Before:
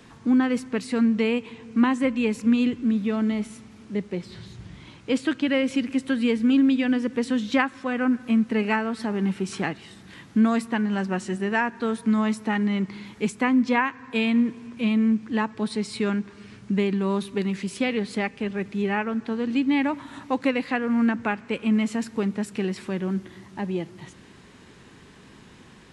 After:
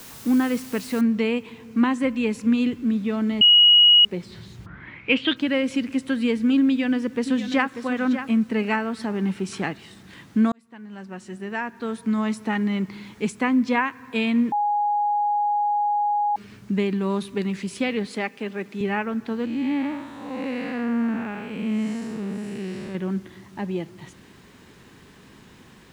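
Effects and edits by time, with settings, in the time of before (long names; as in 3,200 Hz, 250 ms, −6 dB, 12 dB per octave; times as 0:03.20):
0:01.01: noise floor change −43 dB −68 dB
0:03.41–0:04.05: beep over 2,900 Hz −10 dBFS
0:04.65–0:05.35: low-pass with resonance 1,300 Hz → 3,700 Hz, resonance Q 11
0:06.67–0:07.76: delay throw 590 ms, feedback 15%, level −10 dB
0:10.52–0:12.48: fade in
0:14.52–0:16.36: beep over 828 Hz −19 dBFS
0:18.07–0:18.81: high-pass filter 230 Hz
0:19.45–0:22.95: spectrum smeared in time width 238 ms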